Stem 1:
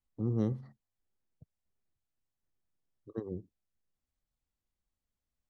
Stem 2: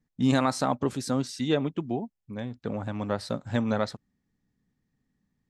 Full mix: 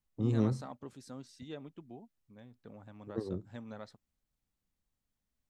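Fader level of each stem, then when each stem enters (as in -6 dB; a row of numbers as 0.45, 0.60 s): +1.5, -19.5 dB; 0.00, 0.00 s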